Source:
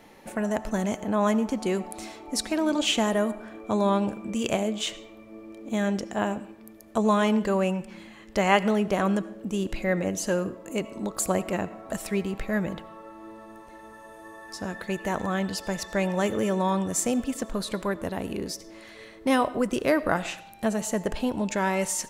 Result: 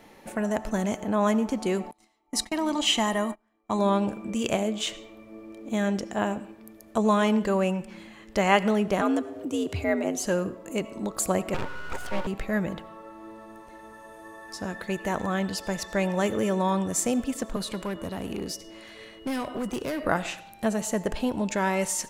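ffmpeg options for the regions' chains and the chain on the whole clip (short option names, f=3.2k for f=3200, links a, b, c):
-filter_complex "[0:a]asettb=1/sr,asplit=3[a][b][c];[a]atrim=end=1.914[d];[b]atrim=start=1.91:end=3.79,asetpts=PTS-STARTPTS,afade=t=in:d=0.004:c=qsin,afade=t=out:st=1.876:d=0.004:c=qsin,equalizer=f=110:t=o:w=1.9:g=-8,aecho=1:1:1:0.51,atrim=end_sample=82908,agate=range=-28dB:threshold=-36dB:ratio=16:release=100:detection=peak[e];[c]atrim=start=3.786[f];[d][e]acrossfade=d=0.004:c1=hsin:c2=qsin[g];[g][f]acrossfade=d=0.004:c1=qsin:c2=hsin,asettb=1/sr,asplit=3[h][i][j];[h]atrim=end=9.014[k];[i]atrim=start=9.01:end=10.25,asetpts=PTS-STARTPTS,afade=t=in:d=0.004:c=qsin,afade=t=out:st=1.236:d=0.004:c=qsin,bandreject=f=1.7k:w=14,acompressor=mode=upward:threshold=-31dB:ratio=2.5:attack=3.2:release=140:knee=2.83:detection=peak,afreqshift=68[l];[j]atrim=start=10.246[m];[k][l]acrossfade=d=0.004:c1=hsin:c2=qsin[n];[n][m]acrossfade=d=0.004:c1=qsin:c2=hsin,asettb=1/sr,asplit=3[o][p][q];[o]atrim=end=11.544[r];[p]atrim=start=11.54:end=12.27,asetpts=PTS-STARTPTS,afade=t=in:d=0.004:c=qsin,afade=t=out:st=0.726:d=0.004:c=qsin,highshelf=f=5.4k:g=-11.5,aeval=exprs='val(0)+0.0282*sin(2*PI*730*n/s)':c=same,aeval=exprs='abs(val(0))':c=same[s];[q]atrim=start=12.266[t];[r][s]acrossfade=d=0.004:c1=hsin:c2=qsin[u];[u][t]acrossfade=d=0.004:c1=qsin:c2=hsin,asettb=1/sr,asplit=3[v][w][x];[v]atrim=end=17.564[y];[w]atrim=start=17.56:end=20.05,asetpts=PTS-STARTPTS,afade=t=in:d=0.004:c=qsin,afade=t=out:st=2.486:d=0.004:c=qsin,acrossover=split=240|3000[z][aa][ab];[aa]acompressor=threshold=-29dB:ratio=2.5:attack=3.2:release=140:knee=2.83:detection=peak[ac];[z][ac][ab]amix=inputs=3:normalize=0,aeval=exprs='val(0)+0.00224*sin(2*PI*2900*n/s)':c=same,volume=26dB,asoftclip=hard,volume=-26dB[ad];[x]atrim=start=20.046[ae];[y][ad]acrossfade=d=0.004:c1=hsin:c2=qsin[af];[af][ae]acrossfade=d=0.004:c1=qsin:c2=hsin"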